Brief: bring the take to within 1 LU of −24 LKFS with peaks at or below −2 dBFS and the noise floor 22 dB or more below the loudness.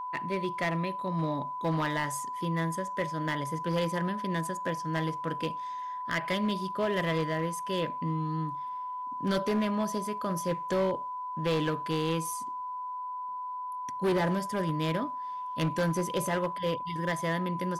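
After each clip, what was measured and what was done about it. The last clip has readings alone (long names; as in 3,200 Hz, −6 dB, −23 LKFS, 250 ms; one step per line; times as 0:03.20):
share of clipped samples 1.8%; peaks flattened at −23.0 dBFS; interfering tone 1,000 Hz; level of the tone −34 dBFS; integrated loudness −31.5 LKFS; sample peak −23.0 dBFS; target loudness −24.0 LKFS
→ clipped peaks rebuilt −23 dBFS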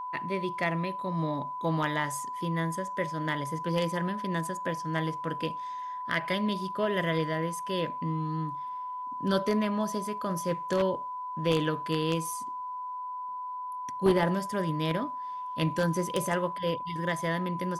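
share of clipped samples 0.0%; interfering tone 1,000 Hz; level of the tone −34 dBFS
→ notch filter 1,000 Hz, Q 30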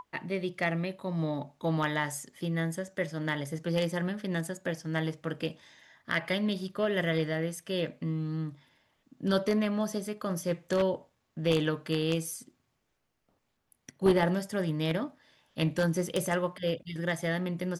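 interfering tone none found; integrated loudness −31.5 LKFS; sample peak −13.5 dBFS; target loudness −24.0 LKFS
→ level +7.5 dB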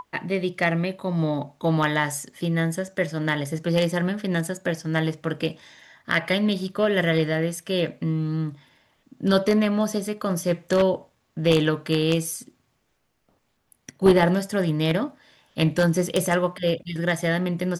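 integrated loudness −24.0 LKFS; sample peak −6.0 dBFS; background noise floor −70 dBFS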